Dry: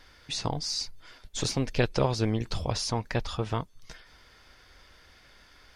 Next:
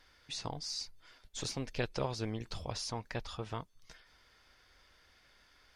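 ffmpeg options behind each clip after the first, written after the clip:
-af "lowshelf=f=480:g=-3.5,volume=-8dB"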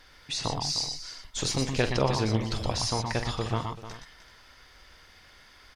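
-af "aecho=1:1:45|120|121|305|385:0.282|0.473|0.355|0.237|0.15,volume=9dB"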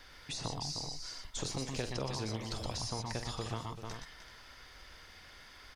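-filter_complex "[0:a]acrossover=split=460|1200|5000[a][b][c][d];[a]acompressor=threshold=-39dB:ratio=4[e];[b]acompressor=threshold=-45dB:ratio=4[f];[c]acompressor=threshold=-49dB:ratio=4[g];[d]acompressor=threshold=-44dB:ratio=4[h];[e][f][g][h]amix=inputs=4:normalize=0"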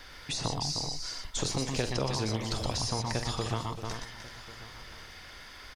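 -af "aecho=1:1:1092:0.119,volume=6.5dB"

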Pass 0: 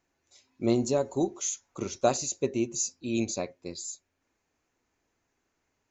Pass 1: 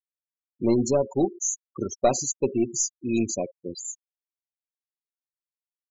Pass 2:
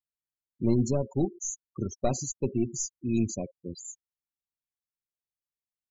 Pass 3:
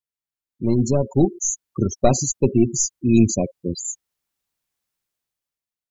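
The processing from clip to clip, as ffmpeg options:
-af "aeval=exprs='(tanh(5.01*val(0)+0.35)-tanh(0.35))/5.01':c=same,afftfilt=real='re*gte(hypot(re,im),0.0251)':imag='im*gte(hypot(re,im),0.0251)':win_size=1024:overlap=0.75,volume=6dB"
-af "bass=f=250:g=14,treble=f=4k:g=2,volume=-9dB"
-af "dynaudnorm=f=200:g=9:m=14.5dB"

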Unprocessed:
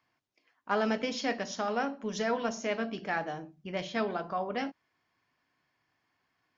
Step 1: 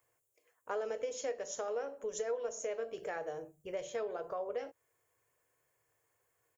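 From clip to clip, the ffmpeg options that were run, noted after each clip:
-af "firequalizer=gain_entry='entry(120,0);entry(200,-20);entry(470,10);entry(720,-4);entry(4900,-10);entry(7300,15)':delay=0.05:min_phase=1,acompressor=threshold=-37dB:ratio=3"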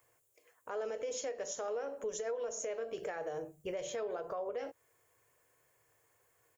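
-af "alimiter=level_in=12.5dB:limit=-24dB:level=0:latency=1:release=139,volume=-12.5dB,volume=6dB"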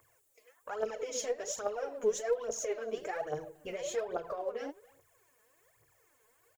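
-filter_complex "[0:a]asplit=2[a][b];[b]adelay=280,highpass=300,lowpass=3.4k,asoftclip=type=hard:threshold=-39dB,volume=-21dB[c];[a][c]amix=inputs=2:normalize=0,aphaser=in_gain=1:out_gain=1:delay=4.8:decay=0.72:speed=1.2:type=triangular"

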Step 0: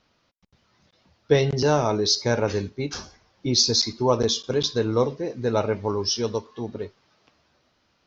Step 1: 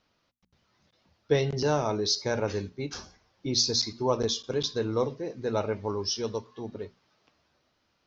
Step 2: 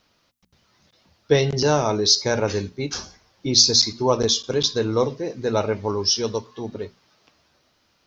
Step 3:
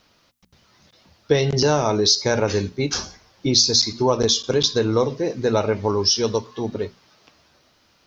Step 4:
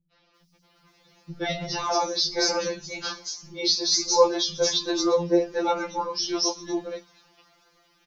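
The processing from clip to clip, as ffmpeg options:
-af "bandreject=f=60:t=h:w=6,bandreject=f=120:t=h:w=6,bandreject=f=180:t=h:w=6,bandreject=f=240:t=h:w=6,volume=-5.5dB"
-af "highshelf=f=4.5k:g=7,volume=6.5dB"
-af "acompressor=threshold=-21dB:ratio=2.5,volume=5dB"
-filter_complex "[0:a]acrossover=split=210|5000[a][b][c];[b]adelay=120[d];[c]adelay=350[e];[a][d][e]amix=inputs=3:normalize=0,afftfilt=real='re*2.83*eq(mod(b,8),0)':imag='im*2.83*eq(mod(b,8),0)':win_size=2048:overlap=0.75"

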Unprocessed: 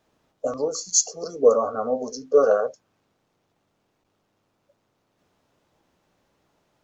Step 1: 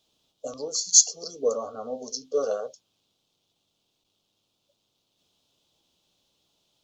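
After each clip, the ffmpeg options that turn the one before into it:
-af "highshelf=f=2.5k:t=q:w=3:g=10.5,volume=-8.5dB"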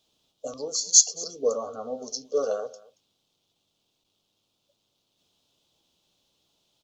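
-af "aecho=1:1:228:0.0891"

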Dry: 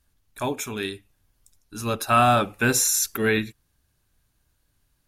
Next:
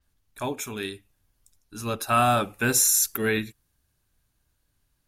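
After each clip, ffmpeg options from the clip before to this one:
-af "adynamicequalizer=threshold=0.0178:dfrequency=6800:dqfactor=0.7:tfrequency=6800:tqfactor=0.7:attack=5:release=100:ratio=0.375:range=3.5:mode=boostabove:tftype=highshelf,volume=-3dB"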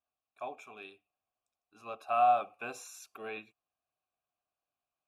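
-filter_complex "[0:a]asplit=3[a][b][c];[a]bandpass=f=730:t=q:w=8,volume=0dB[d];[b]bandpass=f=1.09k:t=q:w=8,volume=-6dB[e];[c]bandpass=f=2.44k:t=q:w=8,volume=-9dB[f];[d][e][f]amix=inputs=3:normalize=0"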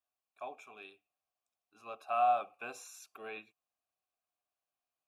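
-af "lowshelf=f=220:g=-7,volume=-2.5dB"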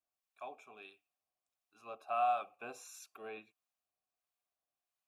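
-filter_complex "[0:a]acrossover=split=960[a][b];[a]aeval=exprs='val(0)*(1-0.5/2+0.5/2*cos(2*PI*1.5*n/s))':c=same[c];[b]aeval=exprs='val(0)*(1-0.5/2-0.5/2*cos(2*PI*1.5*n/s))':c=same[d];[c][d]amix=inputs=2:normalize=0"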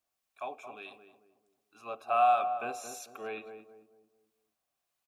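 -filter_complex "[0:a]asplit=2[a][b];[b]adelay=222,lowpass=f=810:p=1,volume=-6.5dB,asplit=2[c][d];[d]adelay=222,lowpass=f=810:p=1,volume=0.42,asplit=2[e][f];[f]adelay=222,lowpass=f=810:p=1,volume=0.42,asplit=2[g][h];[h]adelay=222,lowpass=f=810:p=1,volume=0.42,asplit=2[i][j];[j]adelay=222,lowpass=f=810:p=1,volume=0.42[k];[a][c][e][g][i][k]amix=inputs=6:normalize=0,volume=7.5dB"

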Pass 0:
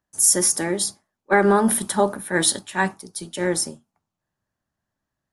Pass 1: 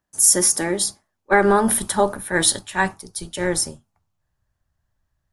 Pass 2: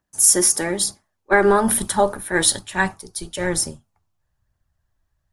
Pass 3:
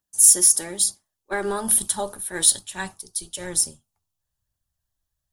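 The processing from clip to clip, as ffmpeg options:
-af "asubboost=boost=9.5:cutoff=78,volume=2dB"
-af "aphaser=in_gain=1:out_gain=1:delay=3.2:decay=0.29:speed=1.1:type=triangular"
-af "aexciter=amount=3.5:drive=4.2:freq=2.9k,volume=-11dB"

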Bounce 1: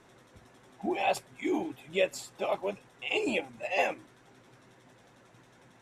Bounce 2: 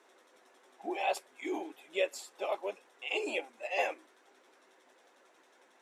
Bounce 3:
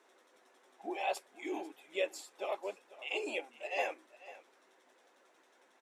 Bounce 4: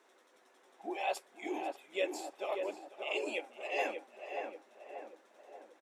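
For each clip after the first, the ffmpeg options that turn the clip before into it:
-af "highpass=f=340:w=0.5412,highpass=f=340:w=1.3066,volume=-3.5dB"
-af "aecho=1:1:494:0.133,volume=-3dB"
-filter_complex "[0:a]asplit=2[a][b];[b]adelay=584,lowpass=f=1.4k:p=1,volume=-4dB,asplit=2[c][d];[d]adelay=584,lowpass=f=1.4k:p=1,volume=0.53,asplit=2[e][f];[f]adelay=584,lowpass=f=1.4k:p=1,volume=0.53,asplit=2[g][h];[h]adelay=584,lowpass=f=1.4k:p=1,volume=0.53,asplit=2[i][j];[j]adelay=584,lowpass=f=1.4k:p=1,volume=0.53,asplit=2[k][l];[l]adelay=584,lowpass=f=1.4k:p=1,volume=0.53,asplit=2[m][n];[n]adelay=584,lowpass=f=1.4k:p=1,volume=0.53[o];[a][c][e][g][i][k][m][o]amix=inputs=8:normalize=0"

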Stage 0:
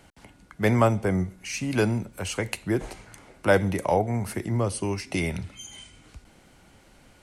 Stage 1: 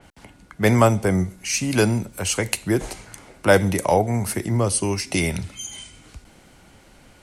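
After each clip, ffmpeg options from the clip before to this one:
-af "adynamicequalizer=threshold=0.00501:dfrequency=3900:dqfactor=0.7:tfrequency=3900:tqfactor=0.7:attack=5:release=100:ratio=0.375:range=4:mode=boostabove:tftype=highshelf,volume=4.5dB"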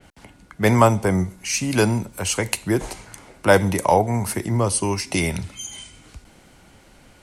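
-af "adynamicequalizer=threshold=0.0112:dfrequency=960:dqfactor=3.6:tfrequency=960:tqfactor=3.6:attack=5:release=100:ratio=0.375:range=3.5:mode=boostabove:tftype=bell"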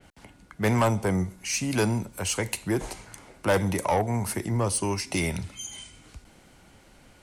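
-af "asoftclip=type=tanh:threshold=-12.5dB,volume=-4dB"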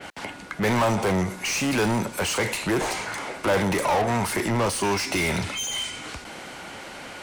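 -filter_complex "[0:a]asplit=2[a][b];[b]highpass=f=720:p=1,volume=28dB,asoftclip=type=tanh:threshold=-16.5dB[c];[a][c]amix=inputs=2:normalize=0,lowpass=f=3.3k:p=1,volume=-6dB"

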